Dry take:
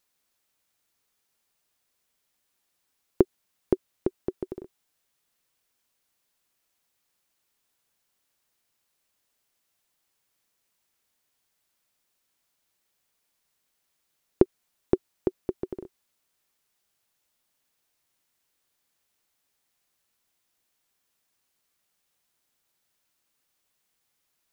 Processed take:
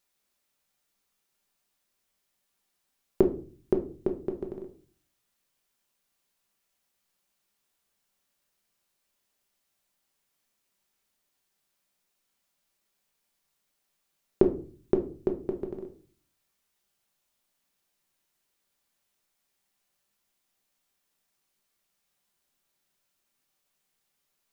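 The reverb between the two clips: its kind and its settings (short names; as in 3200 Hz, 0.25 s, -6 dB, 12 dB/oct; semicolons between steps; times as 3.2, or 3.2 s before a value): shoebox room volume 320 m³, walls furnished, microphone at 1.2 m; gain -3 dB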